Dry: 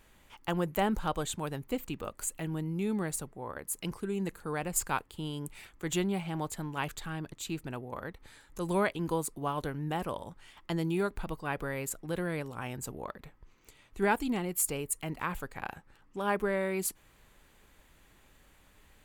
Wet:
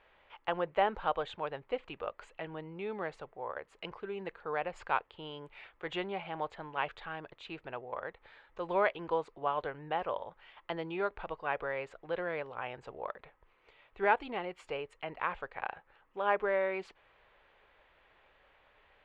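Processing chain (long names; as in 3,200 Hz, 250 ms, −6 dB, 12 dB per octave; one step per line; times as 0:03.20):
low-pass filter 3,200 Hz 24 dB per octave
low shelf with overshoot 360 Hz −12 dB, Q 1.5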